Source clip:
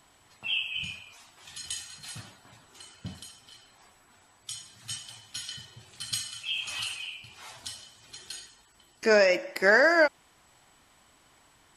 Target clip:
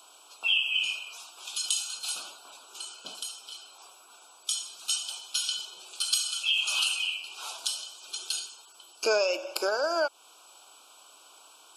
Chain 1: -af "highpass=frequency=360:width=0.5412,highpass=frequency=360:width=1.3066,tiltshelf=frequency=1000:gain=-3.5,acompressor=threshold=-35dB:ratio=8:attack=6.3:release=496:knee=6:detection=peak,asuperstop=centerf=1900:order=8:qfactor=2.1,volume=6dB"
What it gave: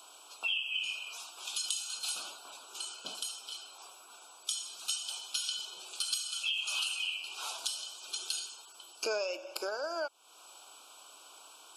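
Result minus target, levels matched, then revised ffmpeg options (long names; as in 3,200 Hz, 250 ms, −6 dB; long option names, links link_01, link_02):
downward compressor: peak gain reduction +8.5 dB
-af "highpass=frequency=360:width=0.5412,highpass=frequency=360:width=1.3066,tiltshelf=frequency=1000:gain=-3.5,acompressor=threshold=-25dB:ratio=8:attack=6.3:release=496:knee=6:detection=peak,asuperstop=centerf=1900:order=8:qfactor=2.1,volume=6dB"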